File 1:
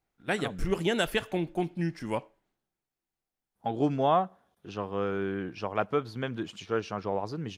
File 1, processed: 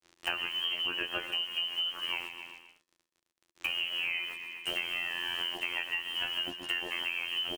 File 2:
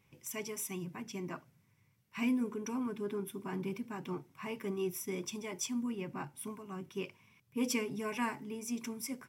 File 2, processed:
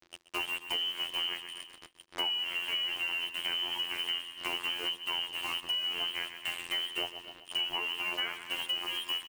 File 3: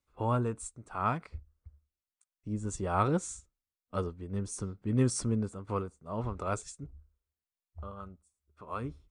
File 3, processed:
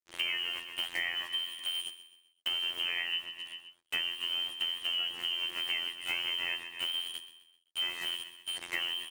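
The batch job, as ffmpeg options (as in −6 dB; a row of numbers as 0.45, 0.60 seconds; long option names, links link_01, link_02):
-filter_complex "[0:a]aeval=exprs='val(0)+0.5*0.0316*sgn(val(0))':channel_layout=same,lowshelf=frequency=470:gain=7,asplit=2[link_01][link_02];[link_02]adelay=17,volume=-11dB[link_03];[link_01][link_03]amix=inputs=2:normalize=0,agate=range=-22dB:threshold=-28dB:ratio=16:detection=peak,afftfilt=real='hypot(re,im)*cos(PI*b)':imag='0':win_size=2048:overlap=0.75,crystalizer=i=6:c=0,lowpass=frequency=2700:width_type=q:width=0.5098,lowpass=frequency=2700:width_type=q:width=0.6013,lowpass=frequency=2700:width_type=q:width=0.9,lowpass=frequency=2700:width_type=q:width=2.563,afreqshift=-3200,acrusher=bits=6:mix=0:aa=0.5,asplit=2[link_04][link_05];[link_05]aecho=0:1:129|258|387|516:0.178|0.0747|0.0314|0.0132[link_06];[link_04][link_06]amix=inputs=2:normalize=0,acompressor=threshold=-38dB:ratio=10,equalizer=frequency=340:width_type=o:width=0.23:gain=10,volume=7dB"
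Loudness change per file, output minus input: −1.5, +6.5, +1.0 LU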